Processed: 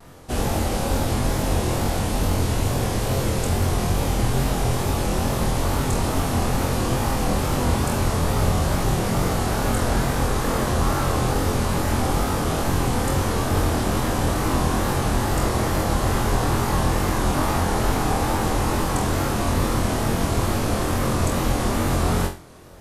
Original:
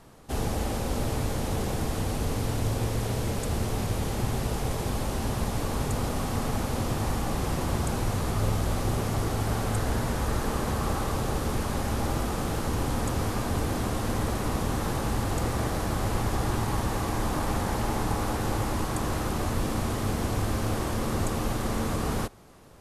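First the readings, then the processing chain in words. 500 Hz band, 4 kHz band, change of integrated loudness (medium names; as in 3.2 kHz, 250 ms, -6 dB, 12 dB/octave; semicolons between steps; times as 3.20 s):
+7.0 dB, +7.5 dB, +6.5 dB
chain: flutter echo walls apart 4 m, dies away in 0.36 s; vibrato 2.3 Hz 91 cents; trim +5 dB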